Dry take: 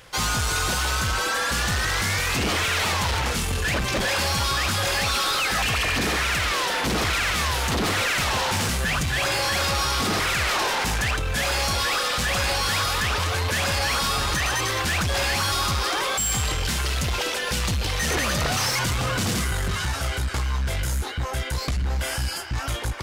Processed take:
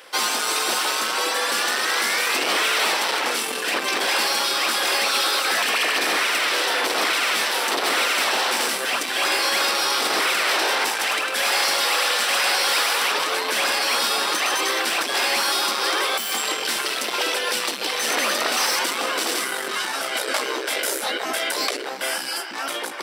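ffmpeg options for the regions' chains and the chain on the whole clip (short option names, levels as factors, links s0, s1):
-filter_complex "[0:a]asettb=1/sr,asplit=3[s0][s1][s2];[s0]atrim=end=10.894[s3];[s1]atrim=start=10.89:end=13.12,asetpts=PTS-STARTPTS,afade=t=in:d=0.004:c=qsin,afade=t=out:st=2.226:d=0.004:c=qsin,highpass=f=400:p=1,aecho=1:1:103|206|309|412|515:0.631|0.265|0.111|0.0467|0.0196,atrim=end_sample=98343[s4];[s2]atrim=start=13.116[s5];[s3][s4]acrossfade=d=0.004:c1=hsin:c2=qsin[s6];[s6][s5]acrossfade=d=0.004:c1=qsin:c2=hsin,asettb=1/sr,asplit=3[s7][s8][s9];[s7]atrim=end=20.154[s10];[s8]atrim=start=20.15:end=21.9,asetpts=PTS-STARTPTS,afade=t=in:d=0.004:c=qsin,afade=t=out:st=1.746:d=0.004:c=qsin,acontrast=30,lowshelf=f=580:t=q:w=1.5:g=12.5[s11];[s9]atrim=start=21.896[s12];[s10][s11]acrossfade=d=0.004:c1=hsin:c2=qsin[s13];[s13][s12]acrossfade=d=0.004:c1=qsin:c2=hsin,bandreject=f=6700:w=6.7,afftfilt=real='re*lt(hypot(re,im),0.282)':imag='im*lt(hypot(re,im),0.282)':win_size=1024:overlap=0.75,highpass=f=290:w=0.5412,highpass=f=290:w=1.3066,volume=1.58"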